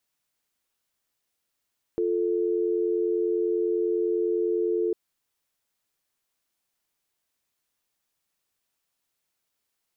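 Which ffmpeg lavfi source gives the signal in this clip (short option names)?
-f lavfi -i "aevalsrc='0.0562*(sin(2*PI*350*t)+sin(2*PI*440*t))':d=2.95:s=44100"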